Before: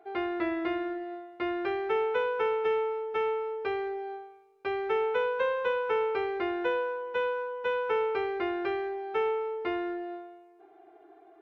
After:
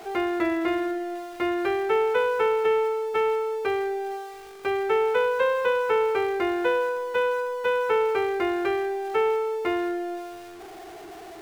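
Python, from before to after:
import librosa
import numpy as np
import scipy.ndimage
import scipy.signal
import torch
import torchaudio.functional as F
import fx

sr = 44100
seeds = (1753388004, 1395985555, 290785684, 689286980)

y = x + 0.5 * 10.0 ** (-44.0 / 20.0) * np.sign(x)
y = y * 10.0 ** (5.0 / 20.0)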